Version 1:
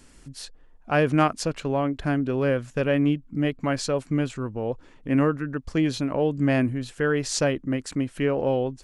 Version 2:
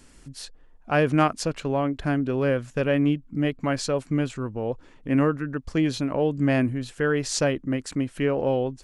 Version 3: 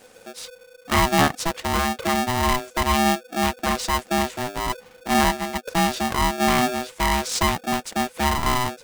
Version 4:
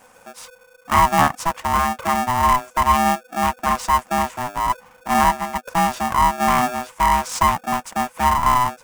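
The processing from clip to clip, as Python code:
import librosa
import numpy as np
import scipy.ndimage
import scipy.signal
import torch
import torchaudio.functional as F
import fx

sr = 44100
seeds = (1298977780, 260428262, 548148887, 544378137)

y1 = x
y2 = y1 * np.sign(np.sin(2.0 * np.pi * 500.0 * np.arange(len(y1)) / sr))
y2 = y2 * 10.0 ** (2.0 / 20.0)
y3 = fx.graphic_eq_15(y2, sr, hz=(400, 1000, 4000), db=(-10, 10, -8))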